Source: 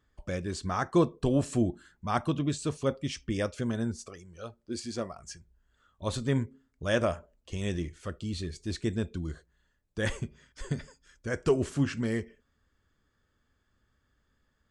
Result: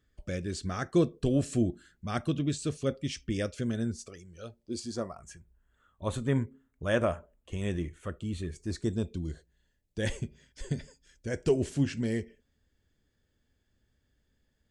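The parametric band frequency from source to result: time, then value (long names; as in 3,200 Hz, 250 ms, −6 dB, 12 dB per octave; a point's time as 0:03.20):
parametric band −14 dB 0.66 octaves
0:04.46 950 Hz
0:05.30 4,900 Hz
0:08.48 4,900 Hz
0:09.24 1,200 Hz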